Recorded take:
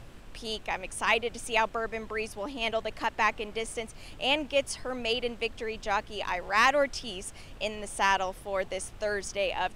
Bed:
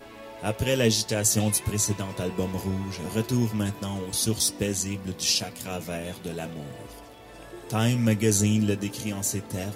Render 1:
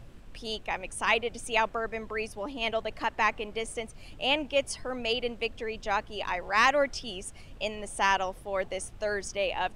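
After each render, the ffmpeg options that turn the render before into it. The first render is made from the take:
-af "afftdn=nr=6:nf=-47"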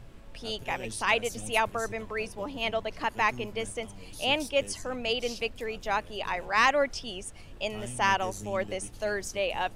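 -filter_complex "[1:a]volume=0.119[s0];[0:a][s0]amix=inputs=2:normalize=0"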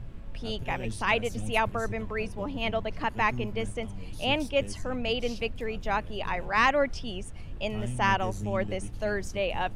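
-af "bass=f=250:g=9,treble=f=4000:g=-7"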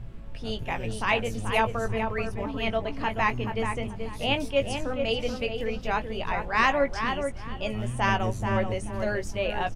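-filter_complex "[0:a]asplit=2[s0][s1];[s1]adelay=18,volume=0.376[s2];[s0][s2]amix=inputs=2:normalize=0,asplit=2[s3][s4];[s4]adelay=432,lowpass=f=2100:p=1,volume=0.531,asplit=2[s5][s6];[s6]adelay=432,lowpass=f=2100:p=1,volume=0.27,asplit=2[s7][s8];[s8]adelay=432,lowpass=f=2100:p=1,volume=0.27,asplit=2[s9][s10];[s10]adelay=432,lowpass=f=2100:p=1,volume=0.27[s11];[s3][s5][s7][s9][s11]amix=inputs=5:normalize=0"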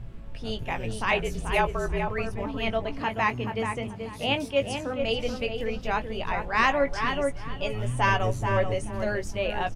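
-filter_complex "[0:a]asettb=1/sr,asplit=3[s0][s1][s2];[s0]atrim=end=1.114[s3];[s1]atrim=start=1.11:end=2.08,asetpts=PTS-STARTPTS,afade=t=in:d=0.004:c=qsin,afade=t=out:st=0.966:d=0.004:c=qsin,afreqshift=-47[s4];[s2]atrim=start=2.076[s5];[s3][s4]acrossfade=d=0.004:c1=hsin:c2=qsin[s6];[s6][s5]acrossfade=d=0.004:c1=qsin:c2=hsin,asettb=1/sr,asplit=3[s7][s8][s9];[s7]atrim=end=2.984[s10];[s8]atrim=start=2.98:end=4.99,asetpts=PTS-STARTPTS,afade=t=in:d=0.004:c=qsin,afade=t=out:st=2.006:d=0.004:c=qsin,highpass=79[s11];[s9]atrim=start=4.986[s12];[s10][s11]acrossfade=d=0.004:c1=hsin:c2=qsin[s13];[s13][s12]acrossfade=d=0.004:c1=qsin:c2=hsin,asettb=1/sr,asplit=3[s14][s15][s16];[s14]atrim=end=6.864[s17];[s15]atrim=start=6.86:end=8.85,asetpts=PTS-STARTPTS,afade=t=in:d=0.004:c=qsin,afade=t=out:st=1.986:d=0.004:c=qsin,aecho=1:1:7:0.58,atrim=end_sample=87759[s18];[s16]atrim=start=8.846[s19];[s17][s18]acrossfade=d=0.004:c1=hsin:c2=qsin[s20];[s20][s19]acrossfade=d=0.004:c1=qsin:c2=hsin"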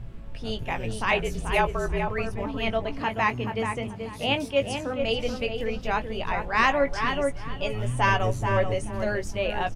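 -af "volume=1.12"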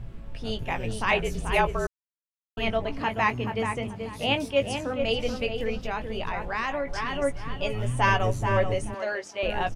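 -filter_complex "[0:a]asettb=1/sr,asplit=3[s0][s1][s2];[s0]atrim=end=5.784[s3];[s1]atrim=start=5.78:end=7.22,asetpts=PTS-STARTPTS,afade=t=in:d=0.004:c=qsin,afade=t=out:st=1.436:d=0.004:c=qsin,acompressor=threshold=0.0562:ratio=6:attack=3.2:release=140:knee=1:detection=peak[s4];[s2]atrim=start=7.216[s5];[s3][s4]acrossfade=d=0.004:c1=hsin:c2=qsin[s6];[s6][s5]acrossfade=d=0.004:c1=qsin:c2=hsin,asettb=1/sr,asplit=3[s7][s8][s9];[s7]atrim=end=8.944[s10];[s8]atrim=start=8.94:end=9.43,asetpts=PTS-STARTPTS,afade=t=in:d=0.004:c=qsin,afade=t=out:st=0.486:d=0.004:c=qsin,highpass=500,lowpass=6600[s11];[s9]atrim=start=9.426[s12];[s10][s11]acrossfade=d=0.004:c1=hsin:c2=qsin[s13];[s13][s12]acrossfade=d=0.004:c1=qsin:c2=hsin,asplit=3[s14][s15][s16];[s14]atrim=end=1.87,asetpts=PTS-STARTPTS,afade=t=out:st=1.866:d=0.004:c=hsin[s17];[s15]atrim=start=1.87:end=2.57,asetpts=PTS-STARTPTS,volume=0[s18];[s16]atrim=start=2.57,asetpts=PTS-STARTPTS,afade=t=in:d=0.004:c=hsin[s19];[s17][s18][s19]concat=n=3:v=0:a=1"

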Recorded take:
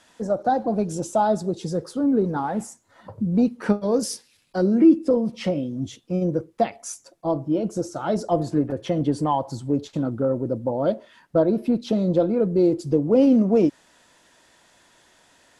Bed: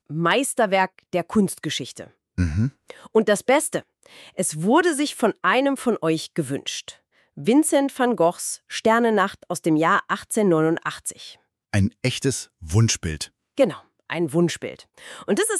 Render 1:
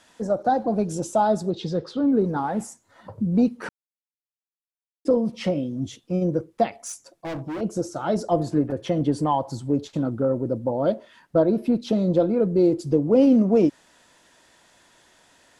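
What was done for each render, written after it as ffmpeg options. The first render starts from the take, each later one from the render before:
-filter_complex "[0:a]asettb=1/sr,asplit=3[s0][s1][s2];[s0]atrim=end=1.504[s3];[s1]atrim=start=1.5:end=2.12,asetpts=PTS-STARTPTS,afade=t=in:d=0.004:c=qsin,afade=t=out:st=0.616:d=0.004:c=qsin,lowpass=f=3700:t=q:w=2.3[s4];[s2]atrim=start=2.116[s5];[s3][s4]acrossfade=d=0.004:c1=hsin:c2=qsin[s6];[s6][s5]acrossfade=d=0.004:c1=qsin:c2=hsin,asettb=1/sr,asplit=3[s7][s8][s9];[s7]atrim=end=6.724[s10];[s8]atrim=start=6.72:end=7.61,asetpts=PTS-STARTPTS,afade=t=in:d=0.004:c=qsin,afade=t=out:st=0.886:d=0.004:c=qsin,volume=26.6,asoftclip=hard,volume=0.0376[s11];[s9]atrim=start=7.606[s12];[s10][s11]acrossfade=d=0.004:c1=hsin:c2=qsin[s13];[s13][s12]acrossfade=d=0.004:c1=qsin:c2=hsin,asplit=3[s14][s15][s16];[s14]atrim=end=3.69,asetpts=PTS-STARTPTS,afade=t=out:st=3.686:d=0.004:c=hsin[s17];[s15]atrim=start=3.69:end=5.05,asetpts=PTS-STARTPTS,volume=0[s18];[s16]atrim=start=5.05,asetpts=PTS-STARTPTS,afade=t=in:d=0.004:c=hsin[s19];[s17][s18][s19]concat=n=3:v=0:a=1"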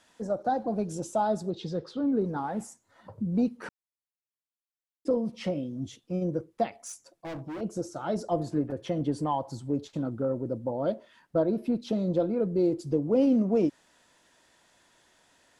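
-af "volume=0.473"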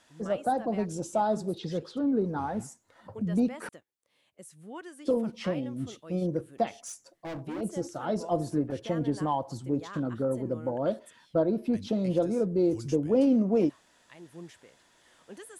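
-filter_complex "[1:a]volume=0.0531[s0];[0:a][s0]amix=inputs=2:normalize=0"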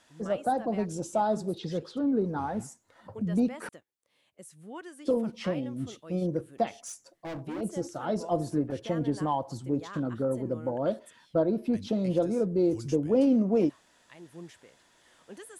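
-af anull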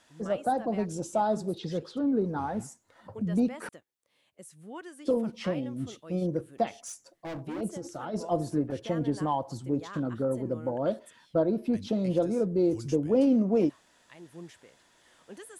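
-filter_complex "[0:a]asplit=3[s0][s1][s2];[s0]afade=t=out:st=7.73:d=0.02[s3];[s1]acompressor=threshold=0.0251:ratio=10:attack=3.2:release=140:knee=1:detection=peak,afade=t=in:st=7.73:d=0.02,afade=t=out:st=8.13:d=0.02[s4];[s2]afade=t=in:st=8.13:d=0.02[s5];[s3][s4][s5]amix=inputs=3:normalize=0"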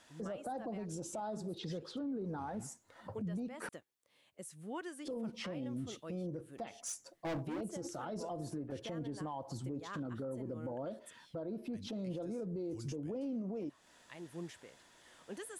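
-af "acompressor=threshold=0.02:ratio=6,alimiter=level_in=2.99:limit=0.0631:level=0:latency=1:release=46,volume=0.335"

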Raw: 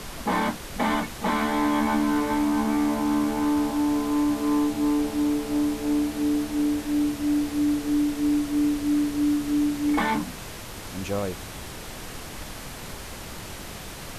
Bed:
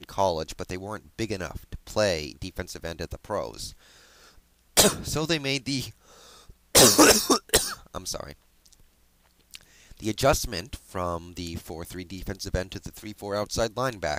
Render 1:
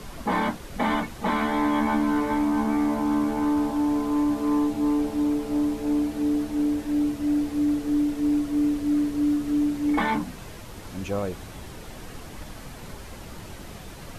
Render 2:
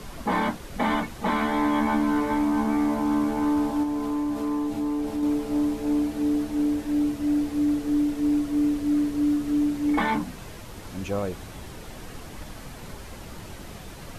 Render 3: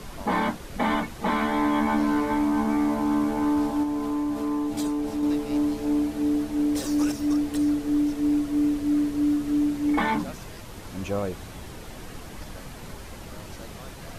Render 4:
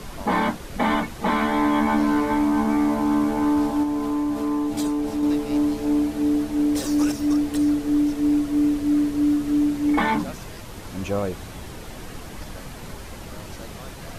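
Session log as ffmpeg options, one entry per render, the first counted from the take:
-af "afftdn=nr=7:nf=-38"
-filter_complex "[0:a]asettb=1/sr,asplit=3[s0][s1][s2];[s0]atrim=end=3.834[s3];[s1]atrim=start=3.83:end=5.23,asetpts=PTS-STARTPTS,afade=t=in:d=0.004:c=qsin,afade=t=out:st=1.396:d=0.004:c=qsin,acompressor=threshold=0.0631:ratio=4:attack=3.2:release=140:knee=1:detection=peak[s4];[s2]atrim=start=5.226[s5];[s3][s4]acrossfade=d=0.004:c1=hsin:c2=qsin[s6];[s6][s5]acrossfade=d=0.004:c1=qsin:c2=hsin"
-filter_complex "[1:a]volume=0.0944[s0];[0:a][s0]amix=inputs=2:normalize=0"
-af "volume=1.41"

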